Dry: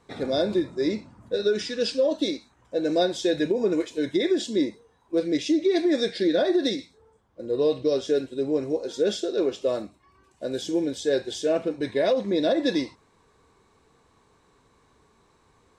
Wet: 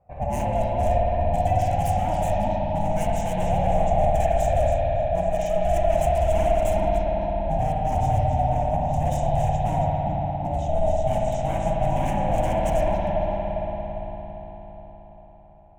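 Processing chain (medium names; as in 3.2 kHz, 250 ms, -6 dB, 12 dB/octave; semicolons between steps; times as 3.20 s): bass shelf 390 Hz -10.5 dB; two-band feedback delay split 1.6 kHz, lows 404 ms, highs 277 ms, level -7.5 dB; level-controlled noise filter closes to 1 kHz, open at -25 dBFS; wavefolder -26 dBFS; FFT filter 120 Hz 0 dB, 230 Hz +12 dB, 400 Hz +13 dB, 1.4 kHz -21 dB, 2.1 kHz +2 dB, 3 kHz -6 dB, 4.4 kHz -26 dB, 6.5 kHz +2 dB; ring modulator 320 Hz; spring tank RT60 4 s, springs 55 ms, chirp 20 ms, DRR -2.5 dB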